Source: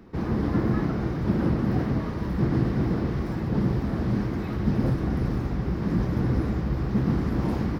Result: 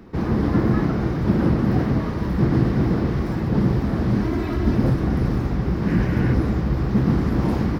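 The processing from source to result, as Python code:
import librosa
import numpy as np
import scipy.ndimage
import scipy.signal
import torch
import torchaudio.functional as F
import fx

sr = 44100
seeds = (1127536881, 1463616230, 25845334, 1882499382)

y = fx.comb(x, sr, ms=3.0, depth=0.65, at=(4.23, 4.75))
y = fx.spec_box(y, sr, start_s=5.87, length_s=0.46, low_hz=1400.0, high_hz=3100.0, gain_db=6)
y = F.gain(torch.from_numpy(y), 5.0).numpy()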